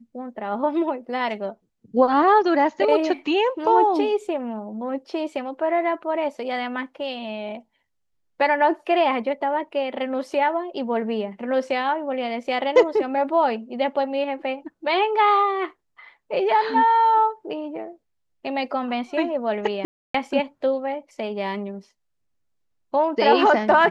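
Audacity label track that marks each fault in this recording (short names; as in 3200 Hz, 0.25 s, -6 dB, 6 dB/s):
19.850000	20.140000	gap 0.294 s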